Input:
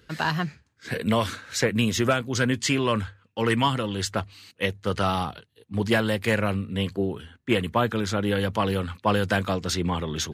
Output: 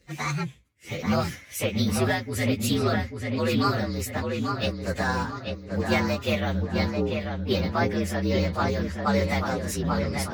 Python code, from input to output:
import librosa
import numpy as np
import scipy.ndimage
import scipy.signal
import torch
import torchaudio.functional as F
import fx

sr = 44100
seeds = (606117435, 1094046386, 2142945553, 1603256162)

y = fx.partial_stretch(x, sr, pct=115)
y = fx.echo_filtered(y, sr, ms=840, feedback_pct=45, hz=3200.0, wet_db=-4)